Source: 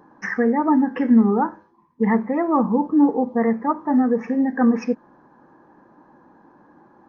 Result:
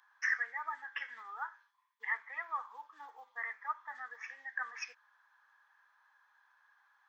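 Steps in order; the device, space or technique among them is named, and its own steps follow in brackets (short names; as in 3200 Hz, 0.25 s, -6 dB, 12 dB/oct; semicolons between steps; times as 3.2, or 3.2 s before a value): headphones lying on a table (HPF 1500 Hz 24 dB/oct; bell 3400 Hz +8 dB 0.2 oct); gain -3 dB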